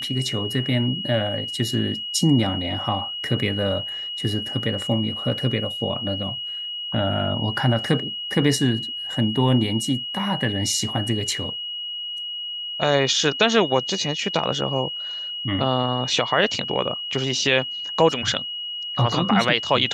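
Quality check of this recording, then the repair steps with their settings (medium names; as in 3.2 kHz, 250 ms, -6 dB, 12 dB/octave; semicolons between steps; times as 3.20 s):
whine 2.9 kHz -28 dBFS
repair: band-stop 2.9 kHz, Q 30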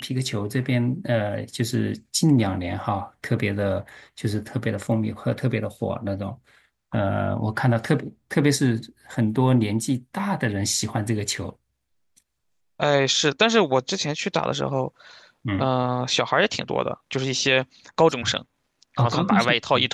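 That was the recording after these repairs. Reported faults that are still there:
nothing left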